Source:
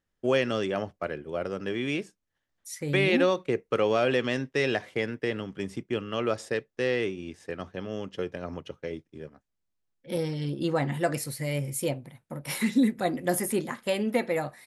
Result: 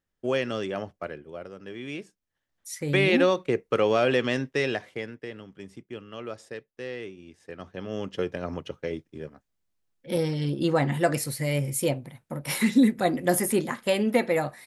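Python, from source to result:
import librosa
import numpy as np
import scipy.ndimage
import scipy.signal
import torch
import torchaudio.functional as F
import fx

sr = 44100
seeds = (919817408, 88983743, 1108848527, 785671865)

y = fx.gain(x, sr, db=fx.line((1.01, -2.0), (1.55, -10.0), (2.71, 2.0), (4.47, 2.0), (5.3, -9.0), (7.29, -9.0), (8.05, 3.5)))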